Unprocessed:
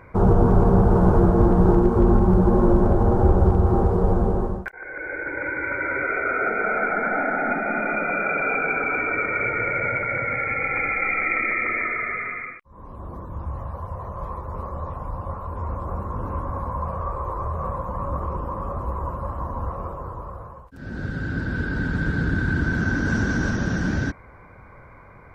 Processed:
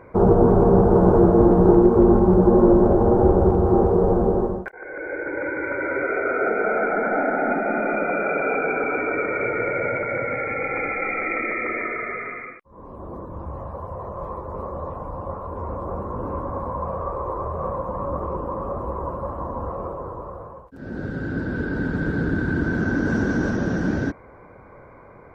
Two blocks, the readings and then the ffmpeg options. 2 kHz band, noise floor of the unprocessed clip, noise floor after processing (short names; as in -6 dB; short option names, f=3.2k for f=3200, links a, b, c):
-3.0 dB, -46 dBFS, -46 dBFS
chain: -af "equalizer=f=430:w=0.48:g=12,volume=-6dB"